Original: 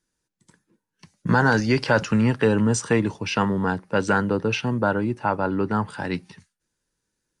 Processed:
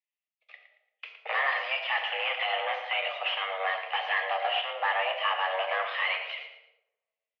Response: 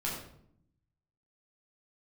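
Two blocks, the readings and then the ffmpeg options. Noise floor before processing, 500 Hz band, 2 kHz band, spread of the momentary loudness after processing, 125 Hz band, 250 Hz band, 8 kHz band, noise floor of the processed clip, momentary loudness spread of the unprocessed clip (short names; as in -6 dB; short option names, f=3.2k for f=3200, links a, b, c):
-81 dBFS, -10.5 dB, -2.0 dB, 6 LU, under -40 dB, under -40 dB, under -35 dB, under -85 dBFS, 7 LU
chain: -filter_complex "[0:a]agate=range=-33dB:threshold=-50dB:ratio=3:detection=peak,aexciter=amount=14.4:drive=4.5:freq=2k,acompressor=threshold=-18dB:ratio=6,asoftclip=type=hard:threshold=-22.5dB,alimiter=level_in=6dB:limit=-24dB:level=0:latency=1:release=50,volume=-6dB,aecho=1:1:114|228|342:0.282|0.0874|0.0271,asplit=2[a][b];[1:a]atrim=start_sample=2205,asetrate=43659,aresample=44100,lowpass=6.6k[c];[b][c]afir=irnorm=-1:irlink=0,volume=-6.5dB[d];[a][d]amix=inputs=2:normalize=0,highpass=f=340:t=q:w=0.5412,highpass=f=340:t=q:w=1.307,lowpass=f=2.5k:t=q:w=0.5176,lowpass=f=2.5k:t=q:w=0.7071,lowpass=f=2.5k:t=q:w=1.932,afreqshift=280,volume=6.5dB"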